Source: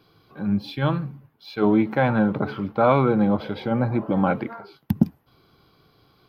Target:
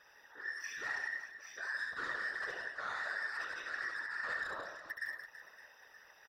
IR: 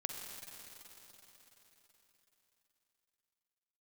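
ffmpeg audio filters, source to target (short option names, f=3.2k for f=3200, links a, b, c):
-af "afftfilt=real='real(if(between(b,1,1012),(2*floor((b-1)/92)+1)*92-b,b),0)':imag='imag(if(between(b,1,1012),(2*floor((b-1)/92)+1)*92-b,b),0)*if(between(b,1,1012),-1,1)':win_size=2048:overlap=0.75,areverse,acompressor=threshold=-33dB:ratio=5,areverse,asoftclip=type=tanh:threshold=-31.5dB,aecho=1:1:70|175|332.5|568.8|923.1:0.631|0.398|0.251|0.158|0.1,afftfilt=real='hypot(re,im)*cos(2*PI*random(0))':imag='hypot(re,im)*sin(2*PI*random(1))':win_size=512:overlap=0.75,volume=1.5dB"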